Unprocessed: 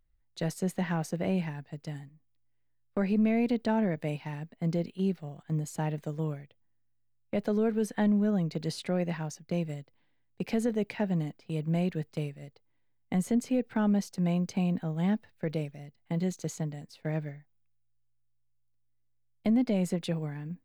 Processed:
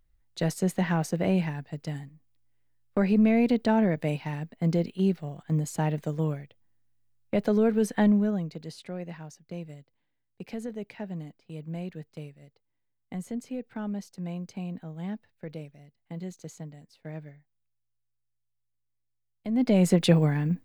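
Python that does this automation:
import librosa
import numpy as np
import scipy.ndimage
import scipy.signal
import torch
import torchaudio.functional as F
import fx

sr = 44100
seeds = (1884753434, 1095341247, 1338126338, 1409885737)

y = fx.gain(x, sr, db=fx.line((8.1, 4.5), (8.63, -7.0), (19.47, -7.0), (19.64, 5.0), (20.1, 12.0)))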